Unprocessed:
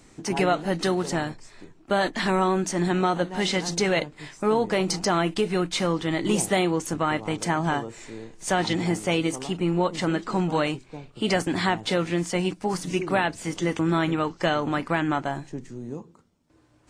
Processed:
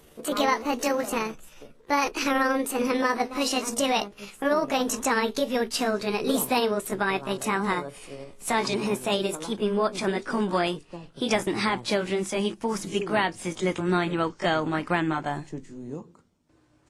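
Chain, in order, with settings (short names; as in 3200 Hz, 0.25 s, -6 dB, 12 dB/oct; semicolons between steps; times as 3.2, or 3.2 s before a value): gliding pitch shift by +7 st ending unshifted; downsampling 32000 Hz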